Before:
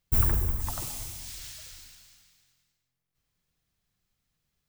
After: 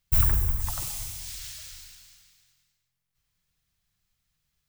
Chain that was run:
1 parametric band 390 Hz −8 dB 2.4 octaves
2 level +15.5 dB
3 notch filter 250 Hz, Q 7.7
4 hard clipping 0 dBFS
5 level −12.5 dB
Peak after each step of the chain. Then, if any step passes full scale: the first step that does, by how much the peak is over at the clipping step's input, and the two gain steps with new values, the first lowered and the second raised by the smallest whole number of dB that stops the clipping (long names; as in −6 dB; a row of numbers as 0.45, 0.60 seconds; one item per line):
−9.5, +6.0, +6.0, 0.0, −12.5 dBFS
step 2, 6.0 dB
step 2 +9.5 dB, step 5 −6.5 dB